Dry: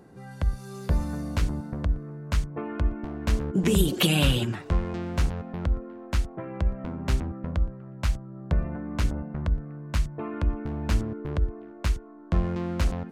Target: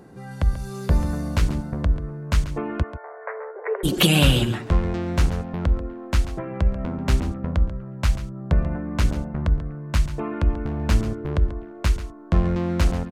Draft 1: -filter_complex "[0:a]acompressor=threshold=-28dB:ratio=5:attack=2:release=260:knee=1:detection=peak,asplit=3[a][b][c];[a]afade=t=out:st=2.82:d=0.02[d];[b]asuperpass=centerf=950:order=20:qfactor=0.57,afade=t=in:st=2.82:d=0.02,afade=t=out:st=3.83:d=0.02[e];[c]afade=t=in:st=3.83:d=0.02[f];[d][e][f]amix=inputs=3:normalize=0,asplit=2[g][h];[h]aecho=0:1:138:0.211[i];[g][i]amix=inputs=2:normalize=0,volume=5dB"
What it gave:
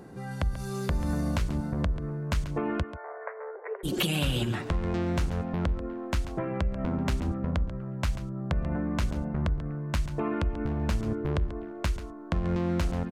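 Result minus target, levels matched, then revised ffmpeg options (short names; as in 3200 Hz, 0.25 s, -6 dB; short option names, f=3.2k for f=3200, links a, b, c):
compressor: peak gain reduction +13.5 dB
-filter_complex "[0:a]asplit=3[a][b][c];[a]afade=t=out:st=2.82:d=0.02[d];[b]asuperpass=centerf=950:order=20:qfactor=0.57,afade=t=in:st=2.82:d=0.02,afade=t=out:st=3.83:d=0.02[e];[c]afade=t=in:st=3.83:d=0.02[f];[d][e][f]amix=inputs=3:normalize=0,asplit=2[g][h];[h]aecho=0:1:138:0.211[i];[g][i]amix=inputs=2:normalize=0,volume=5dB"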